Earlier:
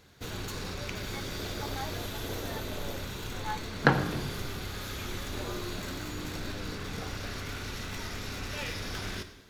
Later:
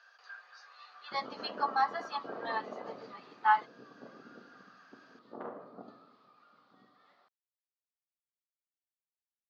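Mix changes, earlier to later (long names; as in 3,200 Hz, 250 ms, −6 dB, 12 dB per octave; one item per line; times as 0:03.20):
speech +9.5 dB
first sound: muted
master: add loudspeaker in its box 240–4,500 Hz, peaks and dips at 340 Hz −6 dB, 690 Hz +3 dB, 1,200 Hz +10 dB, 2,300 Hz −7 dB, 4,400 Hz +7 dB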